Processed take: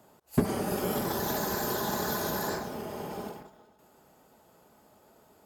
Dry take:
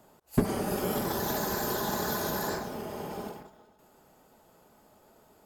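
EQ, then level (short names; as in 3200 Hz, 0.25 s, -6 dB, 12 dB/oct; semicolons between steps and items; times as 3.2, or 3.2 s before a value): HPF 46 Hz; 0.0 dB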